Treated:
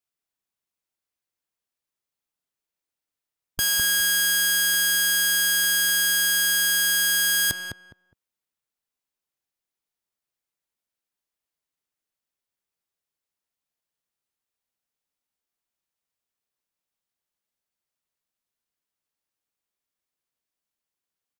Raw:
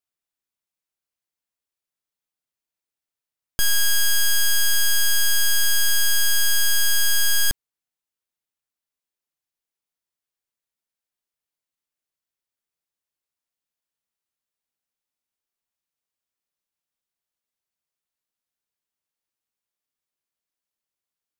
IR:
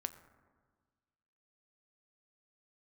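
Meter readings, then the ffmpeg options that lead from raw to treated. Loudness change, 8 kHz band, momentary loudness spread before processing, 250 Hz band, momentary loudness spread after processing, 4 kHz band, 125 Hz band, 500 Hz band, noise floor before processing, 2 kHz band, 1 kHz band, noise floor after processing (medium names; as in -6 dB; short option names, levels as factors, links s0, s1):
+0.5 dB, 0.0 dB, 3 LU, +3.0 dB, 4 LU, 0.0 dB, -6.0 dB, +0.5 dB, under -85 dBFS, +3.5 dB, -0.5 dB, under -85 dBFS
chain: -filter_complex "[0:a]afftfilt=real='re*lt(hypot(re,im),0.708)':imag='im*lt(hypot(re,im),0.708)':win_size=1024:overlap=0.75,asplit=2[s0][s1];[s1]adelay=206,lowpass=f=1400:p=1,volume=0.708,asplit=2[s2][s3];[s3]adelay=206,lowpass=f=1400:p=1,volume=0.23,asplit=2[s4][s5];[s5]adelay=206,lowpass=f=1400:p=1,volume=0.23[s6];[s0][s2][s4][s6]amix=inputs=4:normalize=0"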